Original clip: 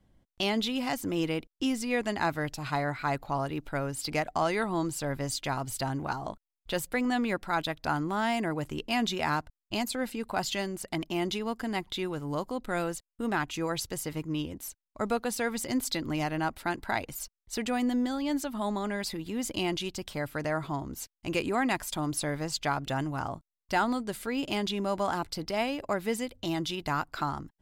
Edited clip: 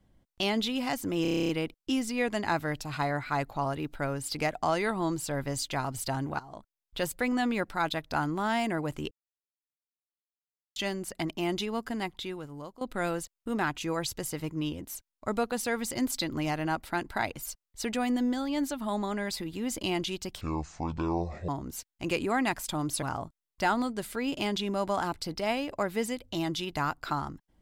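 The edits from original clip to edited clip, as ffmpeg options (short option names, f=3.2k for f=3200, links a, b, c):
-filter_complex "[0:a]asplit=17[a][b][c][d][e][f][g][h][i][j][k][l][m][n][o][p][q];[a]atrim=end=1.252[r];[b]atrim=start=1.218:end=1.252[s];[c]atrim=start=1.218:end=1.252[t];[d]atrim=start=1.218:end=1.252[u];[e]atrim=start=1.218:end=1.252[v];[f]atrim=start=1.218:end=1.252[w];[g]atrim=start=1.218:end=1.252[x];[h]atrim=start=1.218:end=1.252[y];[i]atrim=start=1.218:end=1.252[z];[j]atrim=start=1.218:end=6.12,asetpts=PTS-STARTPTS,afade=t=out:st=4.898:d=0.004:c=hsin:silence=0.177828[aa];[k]atrim=start=6.12:end=8.84,asetpts=PTS-STARTPTS,afade=t=in:d=0.61:silence=0.177828,afade=t=out:st=2.716:d=0.004:c=hsin[ab];[l]atrim=start=8.84:end=10.49,asetpts=PTS-STARTPTS,volume=0[ac];[m]atrim=start=10.49:end=12.54,asetpts=PTS-STARTPTS,afade=t=in:d=0.004:c=hsin,afade=t=out:st=1.09:d=0.96:silence=0.158489[ad];[n]atrim=start=12.54:end=20.144,asetpts=PTS-STARTPTS,afade=t=in:d=0.004:c=hsin:silence=0.158489[ae];[o]atrim=start=20.14:end=20.72,asetpts=PTS-STARTPTS,asetrate=23814,aresample=44100[af];[p]atrim=start=20.716:end=22.262[ag];[q]atrim=start=23.128[ah];[r][s]acrossfade=d=0.004:c1=hsin:c2=hsin[ai];[ai][t]acrossfade=d=0.004:c1=hsin:c2=hsin[aj];[aj][u]acrossfade=d=0.004:c1=hsin:c2=hsin[ak];[ak][v]acrossfade=d=0.004:c1=hsin:c2=hsin[al];[al][w]acrossfade=d=0.004:c1=hsin:c2=hsin[am];[am][x]acrossfade=d=0.004:c1=hsin:c2=hsin[an];[an][y]acrossfade=d=0.004:c1=hsin:c2=hsin[ao];[ao][z]acrossfade=d=0.004:c1=hsin:c2=hsin[ap];[aa][ab][ac][ad][ae]concat=n=5:v=0:a=1[aq];[ap][aq]acrossfade=d=0.004:c1=hsin:c2=hsin[ar];[ar][af]acrossfade=d=0.004:c1=hsin:c2=hsin[as];[as][ag]acrossfade=d=0.004:c1=hsin:c2=hsin[at];[at][ah]acrossfade=d=0.004:c1=hsin:c2=hsin"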